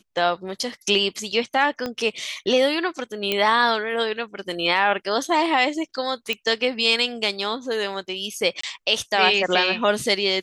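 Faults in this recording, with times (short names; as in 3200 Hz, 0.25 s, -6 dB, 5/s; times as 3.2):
1.86 pop -14 dBFS
3.32 pop -8 dBFS
6.33 pop -12 dBFS
8.61–8.63 gap 24 ms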